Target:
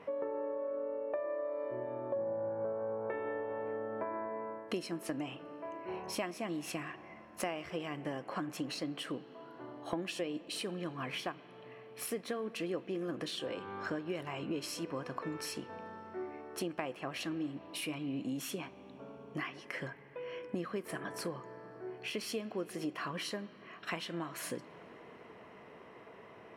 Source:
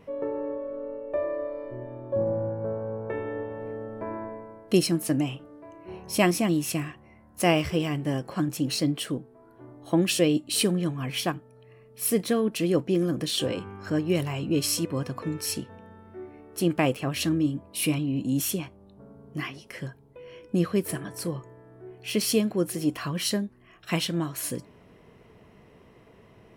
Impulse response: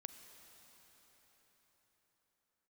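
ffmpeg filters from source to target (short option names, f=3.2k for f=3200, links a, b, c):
-filter_complex "[0:a]highpass=f=1.1k:p=1,aemphasis=mode=reproduction:type=75kf,acompressor=threshold=-45dB:ratio=6,asplit=2[a][b];[1:a]atrim=start_sample=2205,lowpass=2.4k[c];[b][c]afir=irnorm=-1:irlink=0,volume=1dB[d];[a][d]amix=inputs=2:normalize=0,volume=6dB"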